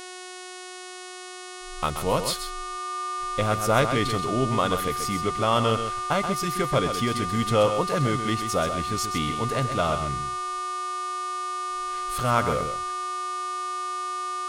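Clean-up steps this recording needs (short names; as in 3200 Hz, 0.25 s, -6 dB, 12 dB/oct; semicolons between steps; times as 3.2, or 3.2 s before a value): clip repair -9.5 dBFS; de-hum 366.1 Hz, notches 29; notch 1200 Hz, Q 30; inverse comb 0.13 s -8.5 dB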